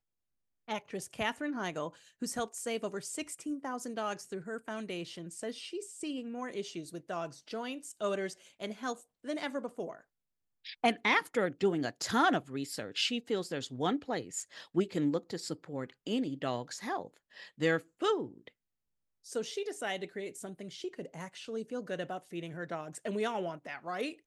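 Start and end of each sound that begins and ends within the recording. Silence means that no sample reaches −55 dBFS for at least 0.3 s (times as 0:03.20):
0:00.68–0:10.01
0:10.65–0:18.49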